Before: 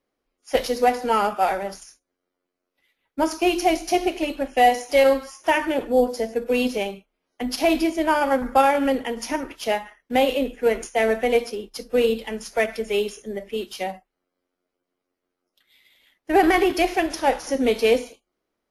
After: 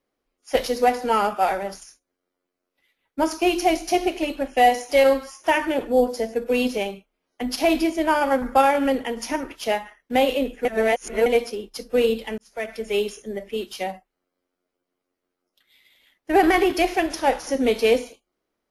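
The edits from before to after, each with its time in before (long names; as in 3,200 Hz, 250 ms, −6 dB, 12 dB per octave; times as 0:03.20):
0:10.65–0:11.26: reverse
0:12.38–0:12.96: fade in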